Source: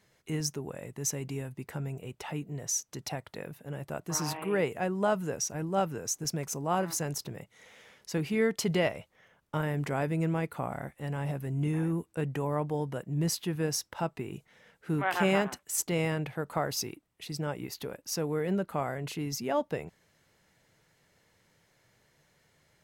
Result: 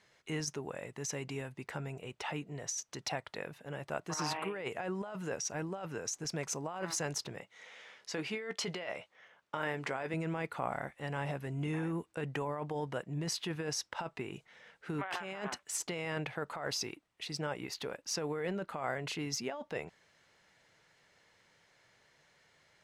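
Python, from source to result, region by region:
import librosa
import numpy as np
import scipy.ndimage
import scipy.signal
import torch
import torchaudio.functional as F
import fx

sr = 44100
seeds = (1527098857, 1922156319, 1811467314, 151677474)

y = fx.chain(x, sr, fx.highpass(hz=250.0, slope=6),
    fx.high_shelf(hz=11000.0, db=-7.0),
    fx.doubler(ms=16.0, db=-13.0), at=(7.4, 10.14))
y = scipy.signal.sosfilt(scipy.signal.bessel(2, 5300.0, 'lowpass', norm='mag', fs=sr, output='sos'), y)
y = fx.low_shelf(y, sr, hz=430.0, db=-11.5)
y = fx.over_compress(y, sr, threshold_db=-38.0, ratio=-1.0)
y = y * 10.0 ** (1.5 / 20.0)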